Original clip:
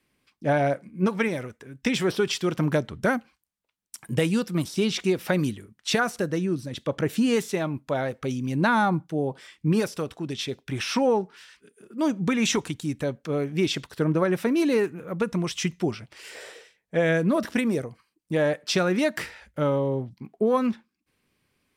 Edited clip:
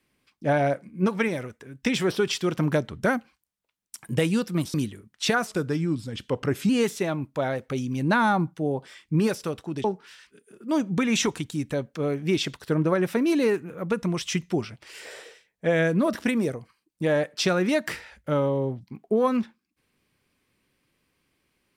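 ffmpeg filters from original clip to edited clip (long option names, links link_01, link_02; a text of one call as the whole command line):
ffmpeg -i in.wav -filter_complex "[0:a]asplit=5[link_01][link_02][link_03][link_04][link_05];[link_01]atrim=end=4.742[link_06];[link_02]atrim=start=5.388:end=6.124[link_07];[link_03]atrim=start=6.12:end=7.22,asetpts=PTS-STARTPTS,asetrate=39690,aresample=44100[link_08];[link_04]atrim=start=7.216:end=10.372[link_09];[link_05]atrim=start=11.138[link_10];[link_06][link_07]acrossfade=duration=0.004:curve1=hsin:curve2=hsin[link_11];[link_11][link_08]acrossfade=duration=0.004:curve1=hsin:curve2=hsin[link_12];[link_12][link_09]acrossfade=duration=0.004:curve1=hsin:curve2=hsin[link_13];[link_13][link_10]acrossfade=duration=0.004:curve1=hsin:curve2=hsin" out.wav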